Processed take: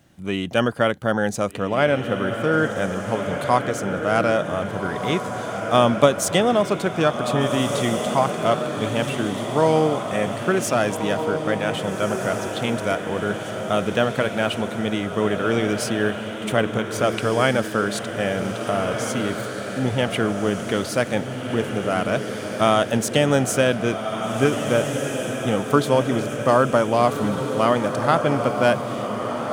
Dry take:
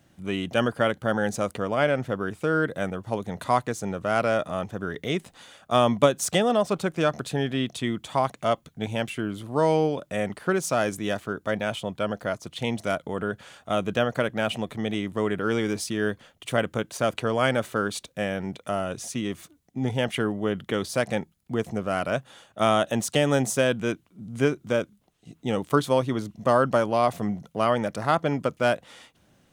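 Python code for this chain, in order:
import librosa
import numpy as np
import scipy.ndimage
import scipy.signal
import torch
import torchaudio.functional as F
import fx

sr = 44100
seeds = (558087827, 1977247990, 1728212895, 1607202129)

y = fx.echo_diffused(x, sr, ms=1618, feedback_pct=52, wet_db=-6)
y = y * librosa.db_to_amplitude(3.5)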